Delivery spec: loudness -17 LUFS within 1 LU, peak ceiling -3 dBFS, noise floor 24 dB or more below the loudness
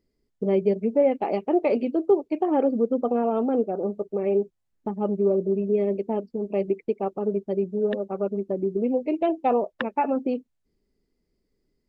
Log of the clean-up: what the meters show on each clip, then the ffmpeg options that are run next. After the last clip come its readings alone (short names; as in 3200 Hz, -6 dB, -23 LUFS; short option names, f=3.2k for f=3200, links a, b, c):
loudness -25.0 LUFS; peak -10.0 dBFS; loudness target -17.0 LUFS
-> -af "volume=8dB,alimiter=limit=-3dB:level=0:latency=1"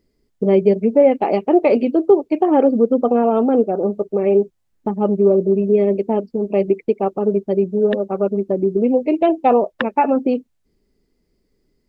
loudness -17.0 LUFS; peak -3.0 dBFS; noise floor -68 dBFS